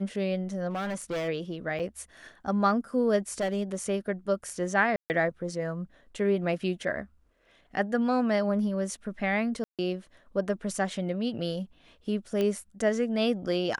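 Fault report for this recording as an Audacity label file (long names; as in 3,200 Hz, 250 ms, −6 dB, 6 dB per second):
0.690000	1.290000	clipping −28.5 dBFS
1.790000	1.800000	drop-out 6.1 ms
3.400000	3.750000	clipping −24.5 dBFS
4.960000	5.100000	drop-out 139 ms
9.640000	9.790000	drop-out 147 ms
12.410000	12.410000	click −17 dBFS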